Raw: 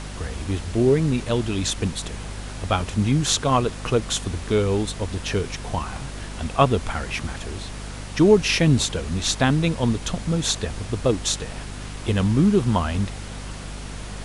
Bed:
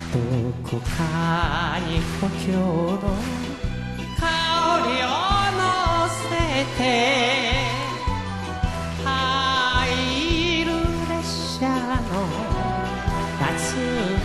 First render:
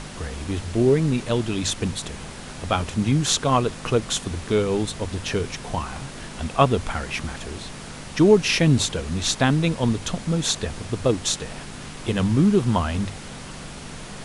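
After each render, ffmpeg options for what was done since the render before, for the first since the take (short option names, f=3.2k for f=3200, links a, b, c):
-af "bandreject=f=50:t=h:w=6,bandreject=f=100:t=h:w=6"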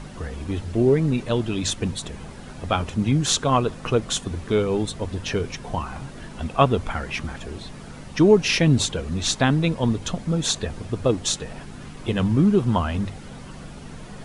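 -af "afftdn=nr=9:nf=-38"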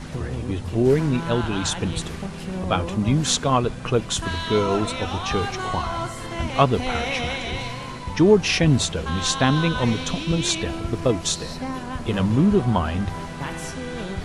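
-filter_complex "[1:a]volume=-8dB[a];[0:a][a]amix=inputs=2:normalize=0"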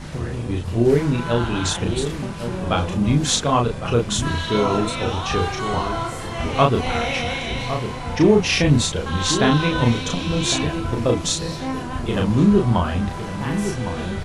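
-filter_complex "[0:a]asplit=2[a][b];[b]adelay=34,volume=-3dB[c];[a][c]amix=inputs=2:normalize=0,asplit=2[d][e];[e]adelay=1108,volume=-9dB,highshelf=f=4k:g=-24.9[f];[d][f]amix=inputs=2:normalize=0"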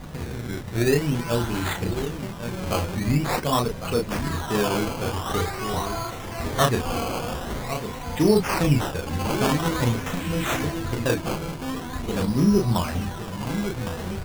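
-af "acrusher=samples=16:mix=1:aa=0.000001:lfo=1:lforange=16:lforate=0.46,flanger=delay=4.1:depth=6.5:regen=-69:speed=0.25:shape=sinusoidal"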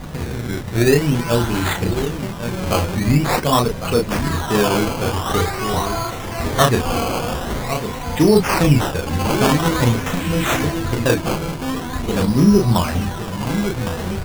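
-af "volume=6.5dB,alimiter=limit=-3dB:level=0:latency=1"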